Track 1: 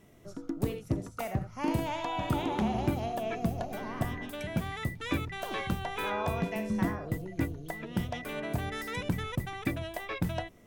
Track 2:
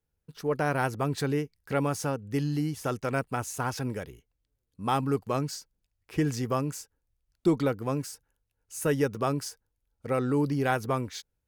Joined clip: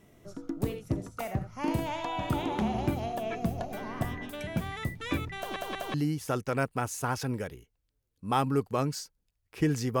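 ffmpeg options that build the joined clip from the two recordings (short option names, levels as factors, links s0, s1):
-filter_complex "[0:a]apad=whole_dur=10,atrim=end=10,asplit=3[s0][s1][s2];[s0]atrim=end=5.562[s3];[s1]atrim=start=5.368:end=5.562[s4];[s2]atrim=start=5.368:end=5.562[s5];[1:a]atrim=start=2.498:end=6.56[s6];[s3][s4]acrossfade=d=0.004:c1=hsin:c2=hsin[s7];[s7][s5]acrossfade=d=0.004:c1=hsin:c2=hsin[s8];[s8][s6]acrossfade=d=0.004:c1=hsin:c2=hsin"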